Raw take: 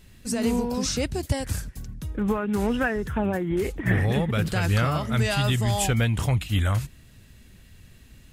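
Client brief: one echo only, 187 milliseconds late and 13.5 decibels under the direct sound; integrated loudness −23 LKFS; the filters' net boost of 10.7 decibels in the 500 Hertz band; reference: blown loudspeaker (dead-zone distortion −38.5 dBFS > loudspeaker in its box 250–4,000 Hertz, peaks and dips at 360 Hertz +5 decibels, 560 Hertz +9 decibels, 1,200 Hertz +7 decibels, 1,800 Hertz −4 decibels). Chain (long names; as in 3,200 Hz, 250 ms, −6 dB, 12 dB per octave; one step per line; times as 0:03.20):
parametric band 500 Hz +6.5 dB
single-tap delay 187 ms −13.5 dB
dead-zone distortion −38.5 dBFS
loudspeaker in its box 250–4,000 Hz, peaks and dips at 360 Hz +5 dB, 560 Hz +9 dB, 1,200 Hz +7 dB, 1,800 Hz −4 dB
level −0.5 dB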